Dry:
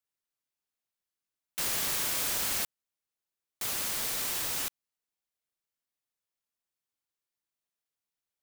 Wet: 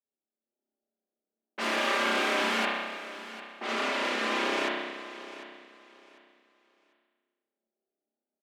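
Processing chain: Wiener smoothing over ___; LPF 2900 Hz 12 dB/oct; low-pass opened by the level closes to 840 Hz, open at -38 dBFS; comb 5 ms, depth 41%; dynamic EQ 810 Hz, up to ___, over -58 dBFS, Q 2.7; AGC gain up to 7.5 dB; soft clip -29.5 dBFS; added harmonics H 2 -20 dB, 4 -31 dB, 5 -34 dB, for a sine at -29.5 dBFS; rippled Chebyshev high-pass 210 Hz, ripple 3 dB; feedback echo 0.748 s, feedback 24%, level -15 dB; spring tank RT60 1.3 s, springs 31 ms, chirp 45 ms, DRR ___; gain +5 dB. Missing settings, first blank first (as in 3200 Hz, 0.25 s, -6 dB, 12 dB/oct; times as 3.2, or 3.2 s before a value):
41 samples, -3 dB, -4.5 dB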